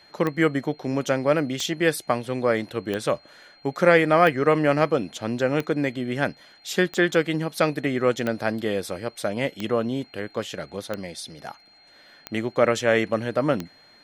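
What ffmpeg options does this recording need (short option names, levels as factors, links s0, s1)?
-af "adeclick=t=4,bandreject=f=4200:w=30"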